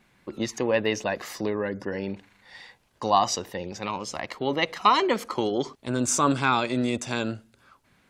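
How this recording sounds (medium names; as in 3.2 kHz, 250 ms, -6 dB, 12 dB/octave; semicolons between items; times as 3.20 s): noise floor -64 dBFS; spectral tilt -4.0 dB/octave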